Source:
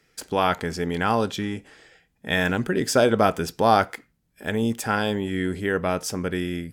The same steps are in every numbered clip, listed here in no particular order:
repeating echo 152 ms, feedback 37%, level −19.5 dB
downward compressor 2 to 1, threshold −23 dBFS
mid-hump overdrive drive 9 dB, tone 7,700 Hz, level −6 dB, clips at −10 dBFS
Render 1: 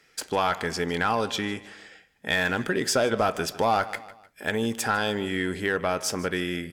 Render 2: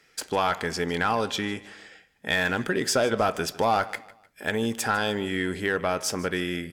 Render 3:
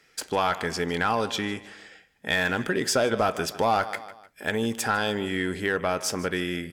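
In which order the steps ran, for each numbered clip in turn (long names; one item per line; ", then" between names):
mid-hump overdrive, then repeating echo, then downward compressor
mid-hump overdrive, then downward compressor, then repeating echo
repeating echo, then mid-hump overdrive, then downward compressor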